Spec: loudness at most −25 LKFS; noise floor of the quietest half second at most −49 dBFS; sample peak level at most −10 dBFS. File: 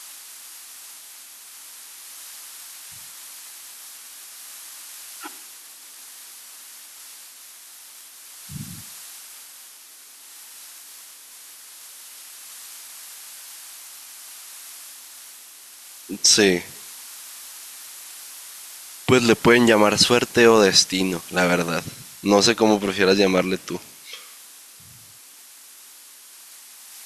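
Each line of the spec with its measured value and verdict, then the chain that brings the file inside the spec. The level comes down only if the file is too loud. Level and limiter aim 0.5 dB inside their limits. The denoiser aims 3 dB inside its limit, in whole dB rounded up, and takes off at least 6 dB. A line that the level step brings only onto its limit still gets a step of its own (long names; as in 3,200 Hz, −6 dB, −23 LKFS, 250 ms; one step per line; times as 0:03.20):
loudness −17.5 LKFS: out of spec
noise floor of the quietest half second −46 dBFS: out of spec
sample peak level −2.5 dBFS: out of spec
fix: level −8 dB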